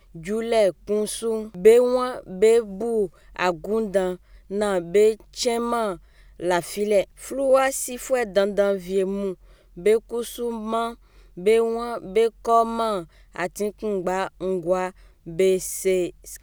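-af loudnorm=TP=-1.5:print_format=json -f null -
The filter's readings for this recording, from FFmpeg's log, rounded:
"input_i" : "-23.3",
"input_tp" : "-3.9",
"input_lra" : "4.0",
"input_thresh" : "-33.6",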